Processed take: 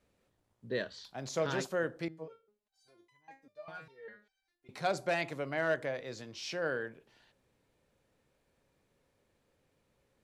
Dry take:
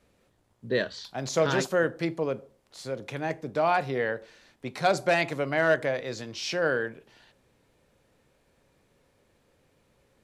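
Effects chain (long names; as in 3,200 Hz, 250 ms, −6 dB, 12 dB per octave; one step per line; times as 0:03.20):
0:02.08–0:04.69: step-sequenced resonator 5 Hz 160–1,000 Hz
level −8.5 dB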